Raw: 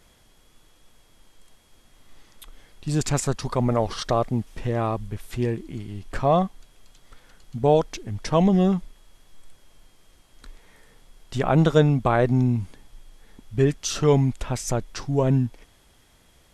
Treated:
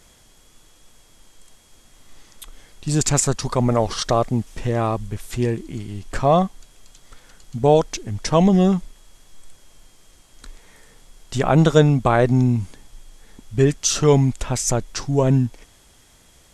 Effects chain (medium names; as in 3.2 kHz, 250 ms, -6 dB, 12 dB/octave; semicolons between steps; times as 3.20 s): peaking EQ 7.2 kHz +7 dB 1 oct; trim +3.5 dB